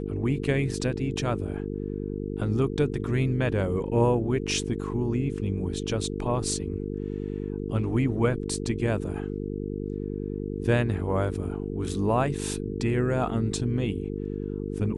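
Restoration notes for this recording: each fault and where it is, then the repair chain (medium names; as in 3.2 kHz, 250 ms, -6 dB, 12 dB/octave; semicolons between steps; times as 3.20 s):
buzz 50 Hz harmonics 9 -32 dBFS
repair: de-hum 50 Hz, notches 9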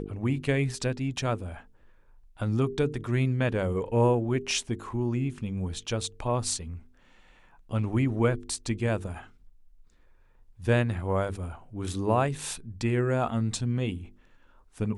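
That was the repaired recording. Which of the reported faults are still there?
nothing left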